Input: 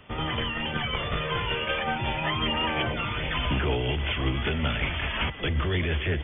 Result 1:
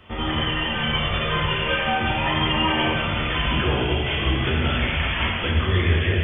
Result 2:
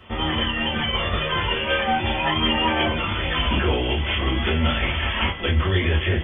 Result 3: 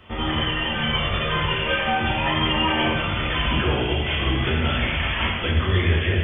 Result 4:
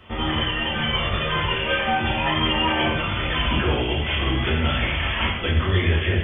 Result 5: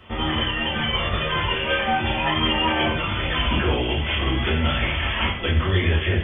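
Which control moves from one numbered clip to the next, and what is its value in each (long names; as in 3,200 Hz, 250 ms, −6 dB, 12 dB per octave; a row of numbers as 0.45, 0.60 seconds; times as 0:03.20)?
reverb whose tail is shaped and stops, gate: 520, 90, 350, 220, 150 milliseconds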